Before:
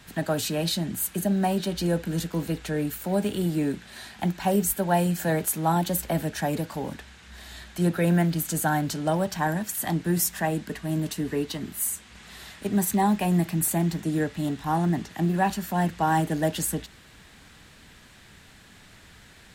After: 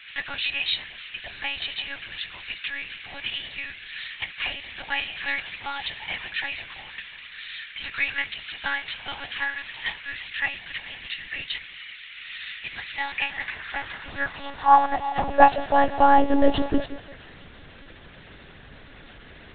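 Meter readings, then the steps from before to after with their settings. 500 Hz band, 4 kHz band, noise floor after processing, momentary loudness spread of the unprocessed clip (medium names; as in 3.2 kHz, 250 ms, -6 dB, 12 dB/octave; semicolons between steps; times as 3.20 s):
-1.5 dB, +6.5 dB, -47 dBFS, 9 LU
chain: high-pass sweep 2.3 kHz -> 290 Hz, 12.97–16.65 s; on a send: repeats whose band climbs or falls 172 ms, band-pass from 450 Hz, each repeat 0.7 oct, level -10.5 dB; on the sum: monotone LPC vocoder at 8 kHz 280 Hz; trim +6 dB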